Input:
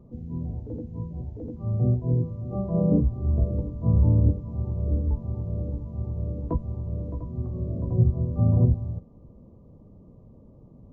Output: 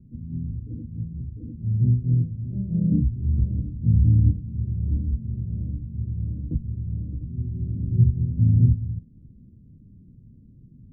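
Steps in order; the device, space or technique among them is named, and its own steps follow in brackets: the neighbour's flat through the wall (low-pass 280 Hz 24 dB/octave; peaking EQ 120 Hz +3.5 dB); 4.93–5.75 s: doubling 32 ms -10 dB

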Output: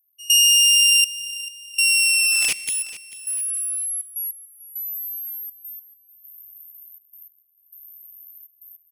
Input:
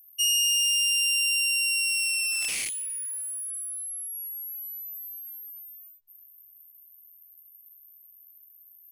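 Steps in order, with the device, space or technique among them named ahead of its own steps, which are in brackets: 1.05–1.74 s: steep low-pass 770 Hz; trance gate with a delay (trance gate "..xxxxx.x." 101 bpm -24 dB; feedback delay 442 ms, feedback 35%, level -16.5 dB); trim +9 dB

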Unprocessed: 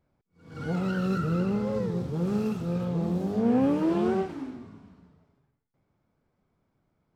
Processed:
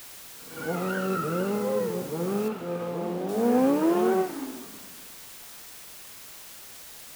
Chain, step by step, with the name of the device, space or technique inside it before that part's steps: wax cylinder (band-pass 310–2700 Hz; wow and flutter; white noise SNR 16 dB); 2.48–3.29 s: tone controls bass -4 dB, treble -10 dB; trim +5 dB

